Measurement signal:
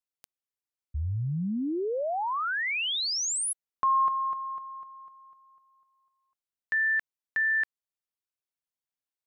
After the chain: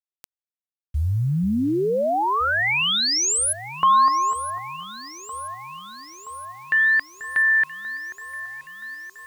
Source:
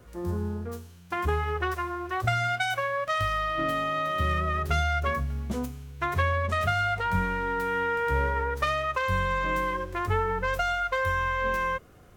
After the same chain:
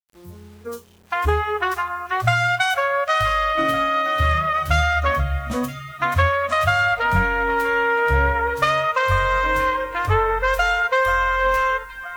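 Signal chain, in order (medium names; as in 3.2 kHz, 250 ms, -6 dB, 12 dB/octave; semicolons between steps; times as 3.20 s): echo whose repeats swap between lows and highs 487 ms, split 1.8 kHz, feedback 78%, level -13 dB; spectral noise reduction 20 dB; bit crusher 10-bit; trim +8 dB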